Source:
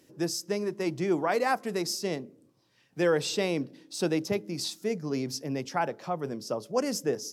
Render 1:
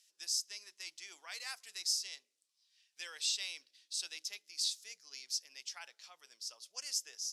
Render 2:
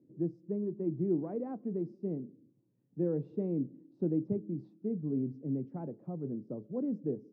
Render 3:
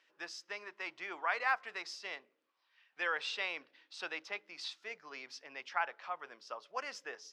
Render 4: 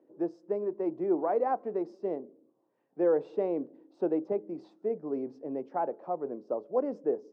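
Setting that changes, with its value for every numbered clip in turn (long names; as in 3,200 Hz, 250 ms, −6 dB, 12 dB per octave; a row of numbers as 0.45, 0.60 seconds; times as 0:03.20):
flat-topped band-pass, frequency: 6,000, 190, 1,900, 500 Hertz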